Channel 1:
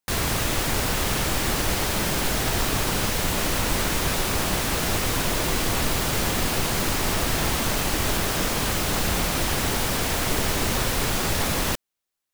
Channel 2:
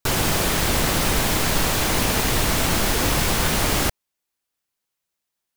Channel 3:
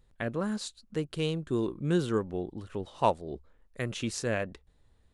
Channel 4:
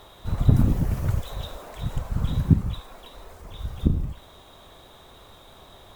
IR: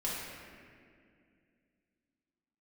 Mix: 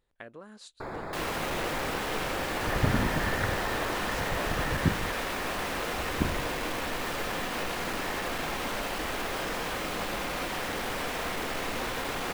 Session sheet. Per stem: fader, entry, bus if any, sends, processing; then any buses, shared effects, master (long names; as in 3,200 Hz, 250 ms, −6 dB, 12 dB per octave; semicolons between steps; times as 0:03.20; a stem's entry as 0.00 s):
−6.5 dB, 1.05 s, send −6 dB, soft clipping −19.5 dBFS, distortion −15 dB
−10.0 dB, 0.75 s, no send, moving average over 15 samples
−5.0 dB, 0.00 s, no send, downward compressor 6 to 1, threshold −35 dBFS, peak gain reduction 15.5 dB; high-shelf EQ 4,400 Hz +7.5 dB
0.0 dB, 2.35 s, no send, low-pass with resonance 1,800 Hz, resonance Q 12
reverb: on, RT60 2.2 s, pre-delay 4 ms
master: bass and treble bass −11 dB, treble −10 dB